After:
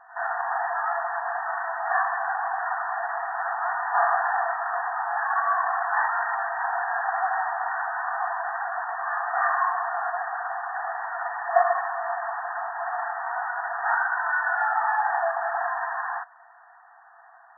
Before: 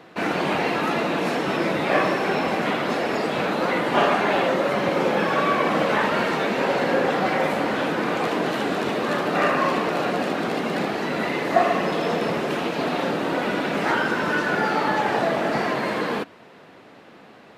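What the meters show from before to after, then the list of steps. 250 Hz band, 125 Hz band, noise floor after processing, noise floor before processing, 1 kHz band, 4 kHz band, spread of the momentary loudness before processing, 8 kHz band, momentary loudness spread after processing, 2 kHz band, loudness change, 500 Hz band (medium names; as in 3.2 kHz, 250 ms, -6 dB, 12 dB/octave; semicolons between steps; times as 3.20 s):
under -40 dB, under -40 dB, -52 dBFS, -48 dBFS, 0.0 dB, under -40 dB, 4 LU, under -40 dB, 7 LU, -1.5 dB, -4.0 dB, -10.0 dB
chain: pre-echo 73 ms -17 dB; FFT band-pass 660–1900 Hz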